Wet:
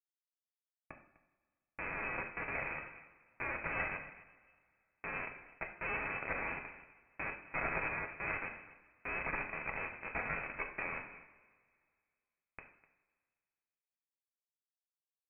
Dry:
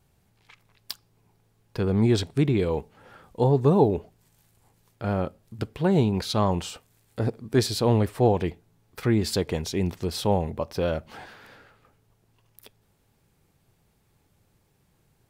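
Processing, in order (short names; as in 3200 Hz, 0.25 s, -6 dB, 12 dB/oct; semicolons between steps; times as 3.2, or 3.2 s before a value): minimum comb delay 1.4 ms; Schmitt trigger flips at -27.5 dBFS; echo 0.251 s -19 dB; two-slope reverb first 0.62 s, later 2.2 s, from -19 dB, DRR 2 dB; limiter -20.5 dBFS, peak gain reduction 4.5 dB; Chebyshev high-pass 200 Hz, order 5; tilt shelf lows -7 dB, about 1100 Hz; inverted band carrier 2800 Hz; gain -1.5 dB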